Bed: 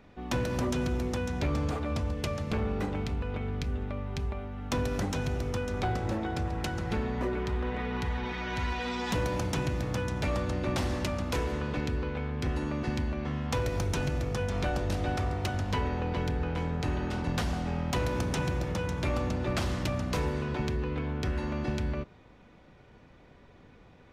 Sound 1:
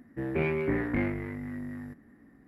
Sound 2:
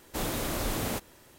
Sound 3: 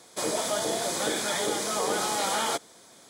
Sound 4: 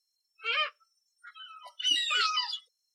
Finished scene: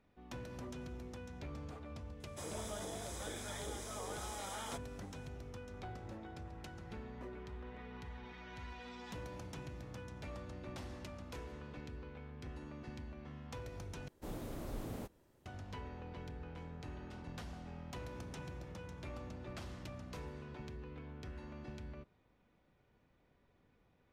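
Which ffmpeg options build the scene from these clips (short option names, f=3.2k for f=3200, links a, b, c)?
-filter_complex "[0:a]volume=-17dB[a];[3:a]bandreject=f=4.4k:w=5.6[b];[2:a]tiltshelf=f=940:g=6.5[c];[a]asplit=2[d][e];[d]atrim=end=14.084[f];[c]atrim=end=1.38,asetpts=PTS-STARTPTS,volume=-16dB[g];[e]atrim=start=15.456[h];[b]atrim=end=3.09,asetpts=PTS-STARTPTS,volume=-17dB,afade=t=in:d=0.004:c=hsin,afade=t=out:st=3.086:d=0.004:c=hsin,adelay=2200[i];[f][g]acrossfade=d=0.004:c1=hsin:c2=hsin[j];[j][h]acrossfade=d=0.004:c1=hsin:c2=hsin[k];[k][i]amix=inputs=2:normalize=0"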